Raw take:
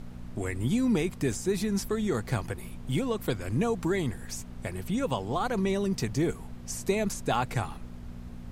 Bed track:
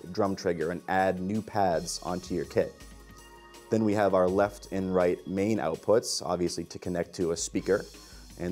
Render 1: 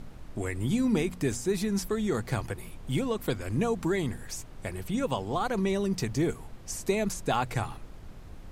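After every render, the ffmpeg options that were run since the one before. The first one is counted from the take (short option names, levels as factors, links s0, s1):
-af "bandreject=f=60:t=h:w=4,bandreject=f=120:t=h:w=4,bandreject=f=180:t=h:w=4,bandreject=f=240:t=h:w=4"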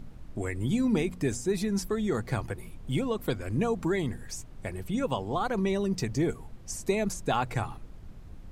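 -af "afftdn=nr=6:nf=-45"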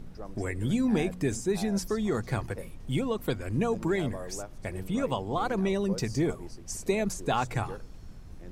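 -filter_complex "[1:a]volume=0.15[s0];[0:a][s0]amix=inputs=2:normalize=0"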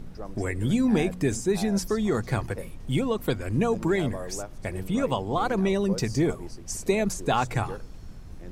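-af "volume=1.5"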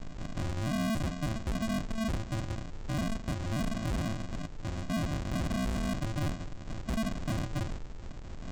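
-af "aresample=16000,acrusher=samples=36:mix=1:aa=0.000001,aresample=44100,asoftclip=type=tanh:threshold=0.0376"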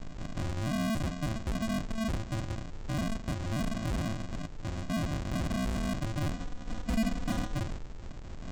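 -filter_complex "[0:a]asettb=1/sr,asplit=3[s0][s1][s2];[s0]atrim=end=6.334[s3];[s1]atrim=start=6.33:end=7.55,asetpts=PTS-STARTPTS,afade=t=in:d=0.004:c=qsin,afade=t=out:st=1.216:d=0.004:c=qsin,aecho=1:1:4.1:0.65,atrim=end_sample=53802[s4];[s2]atrim=start=7.546[s5];[s3][s4]acrossfade=d=0.004:c1=hsin:c2=qsin[s6];[s6][s5]acrossfade=d=0.004:c1=qsin:c2=hsin"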